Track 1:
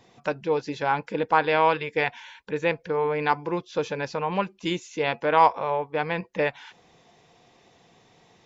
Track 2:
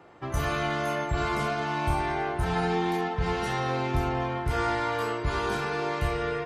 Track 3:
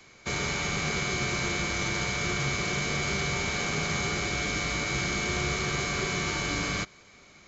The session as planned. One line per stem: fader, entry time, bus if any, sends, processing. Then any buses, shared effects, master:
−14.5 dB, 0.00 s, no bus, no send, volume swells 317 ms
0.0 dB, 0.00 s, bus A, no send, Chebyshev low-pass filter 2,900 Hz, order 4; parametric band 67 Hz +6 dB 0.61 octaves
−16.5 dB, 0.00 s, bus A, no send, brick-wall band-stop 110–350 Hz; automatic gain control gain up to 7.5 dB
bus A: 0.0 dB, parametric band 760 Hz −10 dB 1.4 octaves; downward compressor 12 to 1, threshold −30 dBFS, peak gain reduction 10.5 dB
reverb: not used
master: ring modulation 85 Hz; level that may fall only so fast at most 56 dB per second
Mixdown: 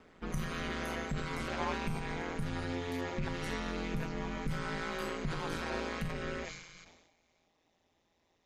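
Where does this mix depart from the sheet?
stem 2: missing Chebyshev low-pass filter 2,900 Hz, order 4
stem 3 −16.5 dB → −26.0 dB

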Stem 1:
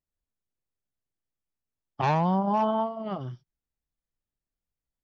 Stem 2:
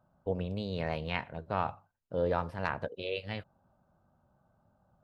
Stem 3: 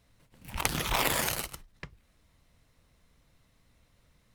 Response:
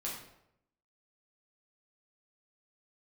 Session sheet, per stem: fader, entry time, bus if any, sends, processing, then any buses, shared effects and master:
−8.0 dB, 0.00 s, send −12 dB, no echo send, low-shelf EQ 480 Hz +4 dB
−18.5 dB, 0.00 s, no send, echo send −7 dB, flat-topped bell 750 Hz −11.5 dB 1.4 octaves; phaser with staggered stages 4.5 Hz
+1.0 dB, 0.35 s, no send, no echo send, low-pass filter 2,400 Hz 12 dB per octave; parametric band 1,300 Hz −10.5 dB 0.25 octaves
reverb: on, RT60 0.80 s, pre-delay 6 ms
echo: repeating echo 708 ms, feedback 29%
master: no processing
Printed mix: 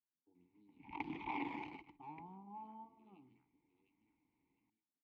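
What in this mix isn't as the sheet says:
stem 1 −8.0 dB → −19.5 dB
master: extra formant filter u

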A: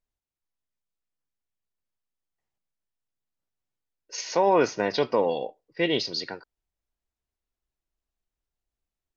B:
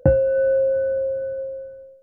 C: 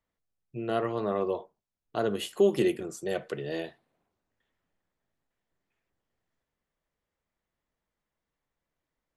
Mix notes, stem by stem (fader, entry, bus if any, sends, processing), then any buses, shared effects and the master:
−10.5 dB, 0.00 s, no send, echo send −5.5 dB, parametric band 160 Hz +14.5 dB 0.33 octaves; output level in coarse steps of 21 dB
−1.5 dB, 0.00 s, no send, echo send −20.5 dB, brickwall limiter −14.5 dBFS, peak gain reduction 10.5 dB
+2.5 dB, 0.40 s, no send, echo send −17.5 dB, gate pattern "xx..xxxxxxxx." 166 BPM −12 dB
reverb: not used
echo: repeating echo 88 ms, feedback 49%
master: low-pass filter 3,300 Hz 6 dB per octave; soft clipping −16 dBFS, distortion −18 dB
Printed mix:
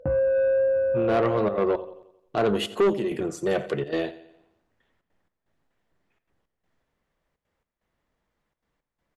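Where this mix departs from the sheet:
stem A: muted
stem C +2.5 dB → +9.5 dB

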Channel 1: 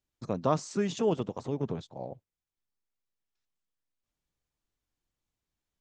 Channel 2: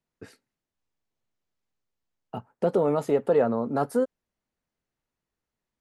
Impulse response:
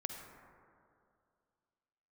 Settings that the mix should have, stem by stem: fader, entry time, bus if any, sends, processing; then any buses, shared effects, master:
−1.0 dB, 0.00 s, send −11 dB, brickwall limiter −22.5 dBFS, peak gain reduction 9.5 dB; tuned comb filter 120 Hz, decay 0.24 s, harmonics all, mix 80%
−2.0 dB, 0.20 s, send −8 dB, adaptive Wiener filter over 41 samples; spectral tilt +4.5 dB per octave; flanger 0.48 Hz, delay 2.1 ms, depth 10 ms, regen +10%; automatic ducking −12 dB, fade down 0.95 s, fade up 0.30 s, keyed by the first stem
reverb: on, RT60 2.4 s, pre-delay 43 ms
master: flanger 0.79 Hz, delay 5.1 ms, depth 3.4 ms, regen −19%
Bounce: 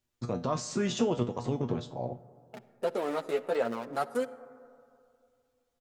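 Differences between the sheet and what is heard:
stem 1 −1.0 dB → +10.0 dB
master: missing flanger 0.79 Hz, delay 5.1 ms, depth 3.4 ms, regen −19%

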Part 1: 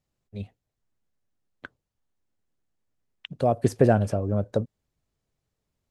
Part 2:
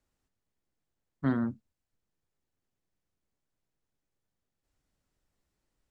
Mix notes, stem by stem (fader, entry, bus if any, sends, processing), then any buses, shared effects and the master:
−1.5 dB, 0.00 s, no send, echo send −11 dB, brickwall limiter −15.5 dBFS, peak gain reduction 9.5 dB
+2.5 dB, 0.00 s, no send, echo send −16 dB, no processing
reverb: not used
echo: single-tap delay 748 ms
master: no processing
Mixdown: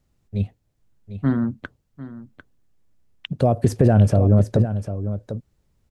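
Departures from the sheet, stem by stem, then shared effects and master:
stem 1 −1.5 dB → +5.0 dB
master: extra low-shelf EQ 270 Hz +9.5 dB

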